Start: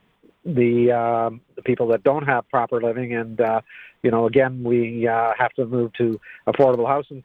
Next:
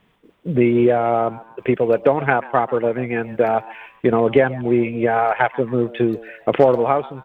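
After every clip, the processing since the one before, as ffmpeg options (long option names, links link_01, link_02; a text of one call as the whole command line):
ffmpeg -i in.wav -filter_complex "[0:a]asplit=4[link_01][link_02][link_03][link_04];[link_02]adelay=137,afreqshift=110,volume=-19.5dB[link_05];[link_03]adelay=274,afreqshift=220,volume=-27.5dB[link_06];[link_04]adelay=411,afreqshift=330,volume=-35.4dB[link_07];[link_01][link_05][link_06][link_07]amix=inputs=4:normalize=0,volume=2dB" out.wav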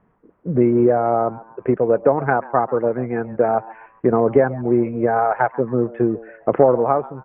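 ffmpeg -i in.wav -af "lowpass=frequency=1500:width=0.5412,lowpass=frequency=1500:width=1.3066" out.wav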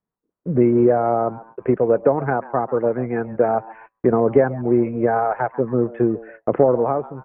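ffmpeg -i in.wav -filter_complex "[0:a]agate=range=-26dB:threshold=-41dB:ratio=16:detection=peak,acrossover=split=550[link_01][link_02];[link_02]alimiter=limit=-14dB:level=0:latency=1:release=295[link_03];[link_01][link_03]amix=inputs=2:normalize=0" out.wav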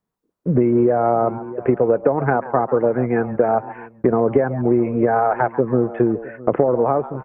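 ffmpeg -i in.wav -af "aecho=1:1:659:0.0794,acompressor=threshold=-17dB:ratio=6,volume=5dB" out.wav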